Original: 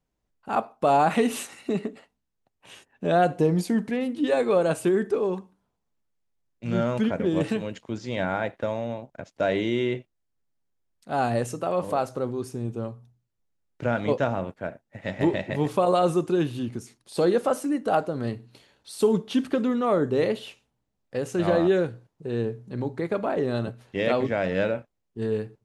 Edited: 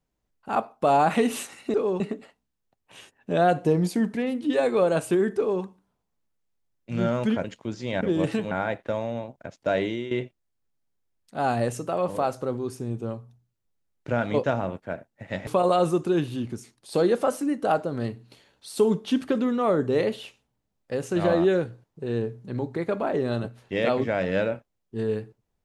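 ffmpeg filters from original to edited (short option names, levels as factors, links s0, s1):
-filter_complex "[0:a]asplit=8[s0][s1][s2][s3][s4][s5][s6][s7];[s0]atrim=end=1.742[s8];[s1]atrim=start=5.108:end=5.372[s9];[s2]atrim=start=1.738:end=7.182[s10];[s3]atrim=start=7.678:end=8.252[s11];[s4]atrim=start=7.178:end=7.682[s12];[s5]atrim=start=8.248:end=9.85,asetpts=PTS-STARTPTS,afade=t=out:st=1.272:d=0.33:silence=0.237137[s13];[s6]atrim=start=9.85:end=15.212,asetpts=PTS-STARTPTS,afade=t=in:d=0.004:c=hsin:silence=0.237137[s14];[s7]atrim=start=15.698[s15];[s8][s9]acrossfade=d=0.004:c1=hsin:c2=hsin[s16];[s16][s10]acrossfade=d=0.004:c1=hsin:c2=hsin[s17];[s17][s11]acrossfade=d=0.004:c1=hsin:c2=hsin[s18];[s18][s12]acrossfade=d=0.004:c1=hsin:c2=hsin[s19];[s13][s14]concat=n=2:v=0:a=1[s20];[s19][s20]acrossfade=d=0.004:c1=hsin:c2=hsin[s21];[s21][s15]acrossfade=d=0.004:c1=hsin:c2=hsin"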